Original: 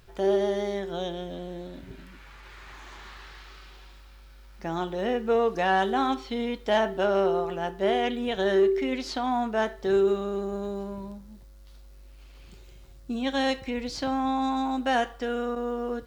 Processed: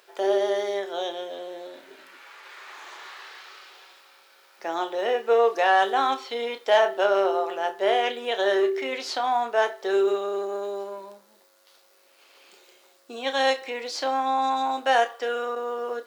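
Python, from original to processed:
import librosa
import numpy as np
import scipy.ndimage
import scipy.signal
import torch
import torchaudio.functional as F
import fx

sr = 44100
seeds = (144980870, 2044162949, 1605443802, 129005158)

y = scipy.signal.sosfilt(scipy.signal.butter(4, 410.0, 'highpass', fs=sr, output='sos'), x)
y = fx.doubler(y, sr, ms=30.0, db=-10.5)
y = F.gain(torch.from_numpy(y), 4.0).numpy()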